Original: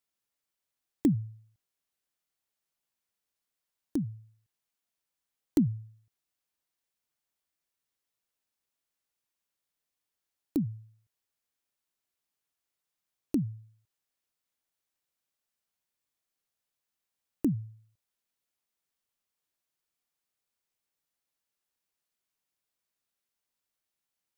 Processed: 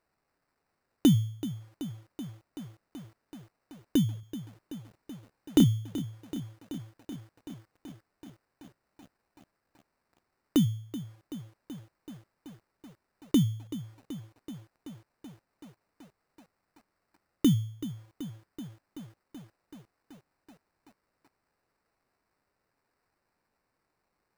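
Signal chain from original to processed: dynamic EQ 1200 Hz, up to +7 dB, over -50 dBFS, Q 0.77; in parallel at +1.5 dB: limiter -25.5 dBFS, peak gain reduction 11.5 dB; on the sum: sample-rate reducer 3300 Hz, jitter 0%; 4.2–5.64 doubler 31 ms -5 dB; lo-fi delay 0.38 s, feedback 80%, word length 8-bit, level -14 dB

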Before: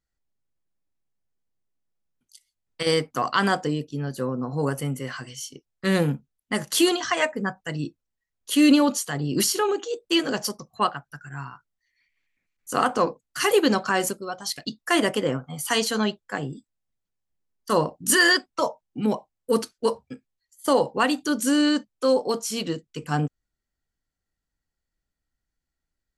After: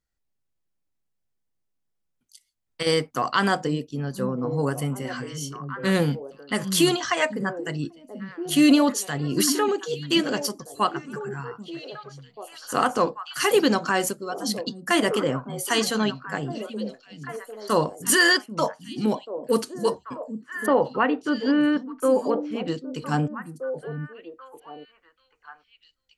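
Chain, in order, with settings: 20.66–22.68 LPF 2400 Hz 24 dB/oct; delay with a stepping band-pass 0.787 s, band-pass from 190 Hz, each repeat 1.4 oct, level -6 dB

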